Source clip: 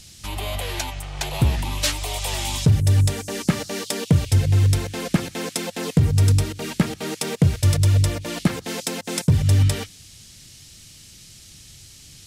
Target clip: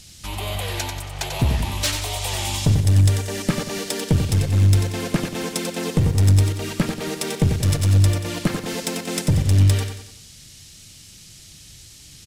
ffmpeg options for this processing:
-filter_complex "[0:a]aeval=exprs='clip(val(0),-1,0.15)':c=same,asplit=2[s0][s1];[s1]aecho=0:1:92|184|276|368|460:0.447|0.197|0.0865|0.0381|0.0167[s2];[s0][s2]amix=inputs=2:normalize=0"

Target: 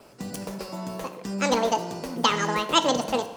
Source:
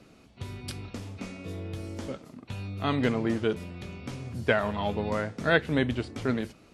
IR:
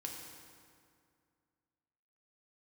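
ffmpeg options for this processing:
-filter_complex "[0:a]adynamicequalizer=threshold=0.00141:dfrequency=3000:dqfactor=7.5:tfrequency=3000:tqfactor=7.5:attack=5:release=100:ratio=0.375:range=3:mode=boostabove:tftype=bell,asplit=2[s0][s1];[1:a]atrim=start_sample=2205[s2];[s1][s2]afir=irnorm=-1:irlink=0,volume=0.794[s3];[s0][s3]amix=inputs=2:normalize=0,asetrate=88200,aresample=44100"

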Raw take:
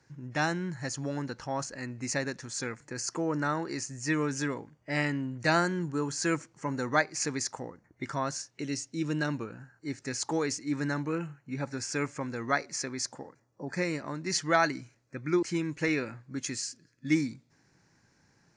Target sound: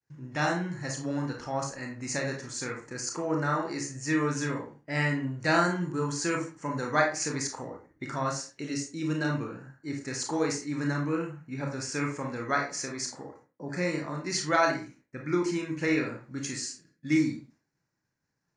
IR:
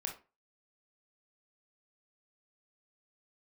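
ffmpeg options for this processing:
-filter_complex "[0:a]agate=range=0.0224:threshold=0.002:ratio=3:detection=peak[s0];[1:a]atrim=start_sample=2205,afade=t=out:st=0.24:d=0.01,atrim=end_sample=11025,asetrate=34398,aresample=44100[s1];[s0][s1]afir=irnorm=-1:irlink=0"

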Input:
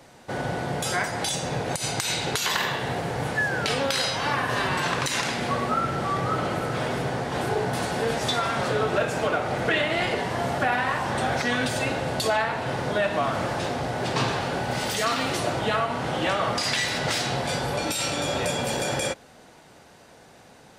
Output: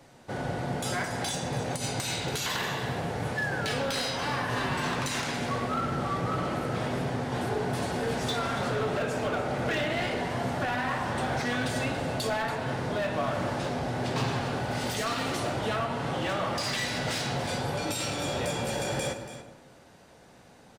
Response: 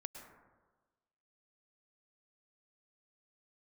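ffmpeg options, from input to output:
-filter_complex "[0:a]flanger=delay=7.1:depth=9.7:regen=-64:speed=0.56:shape=sinusoidal,volume=16.8,asoftclip=hard,volume=0.0596,aecho=1:1:283:0.237,asplit=2[s0][s1];[1:a]atrim=start_sample=2205,lowshelf=f=370:g=7.5[s2];[s1][s2]afir=irnorm=-1:irlink=0,volume=1.12[s3];[s0][s3]amix=inputs=2:normalize=0,volume=0.531"

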